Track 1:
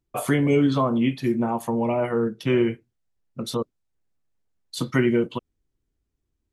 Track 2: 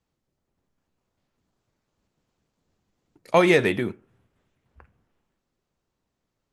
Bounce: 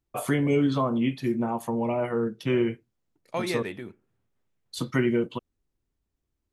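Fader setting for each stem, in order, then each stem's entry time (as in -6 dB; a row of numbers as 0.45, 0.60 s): -3.5, -12.5 dB; 0.00, 0.00 s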